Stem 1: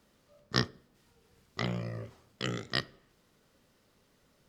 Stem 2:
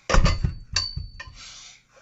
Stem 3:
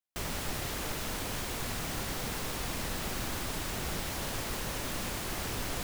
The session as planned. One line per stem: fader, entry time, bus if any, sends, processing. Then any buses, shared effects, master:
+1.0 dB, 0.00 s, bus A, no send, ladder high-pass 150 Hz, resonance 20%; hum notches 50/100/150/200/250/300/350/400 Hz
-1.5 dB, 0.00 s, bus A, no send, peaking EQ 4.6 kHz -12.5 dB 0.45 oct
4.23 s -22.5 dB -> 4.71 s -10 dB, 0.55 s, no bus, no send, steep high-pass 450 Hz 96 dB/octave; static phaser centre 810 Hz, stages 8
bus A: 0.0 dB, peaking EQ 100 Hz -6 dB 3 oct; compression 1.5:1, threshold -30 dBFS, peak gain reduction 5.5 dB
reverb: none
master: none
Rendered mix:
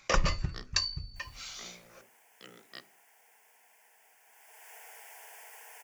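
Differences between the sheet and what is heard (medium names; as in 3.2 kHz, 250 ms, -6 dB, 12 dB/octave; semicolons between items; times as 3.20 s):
stem 1 +1.0 dB -> -10.5 dB; stem 2: missing peaking EQ 4.6 kHz -12.5 dB 0.45 oct; stem 3: entry 0.55 s -> 1.00 s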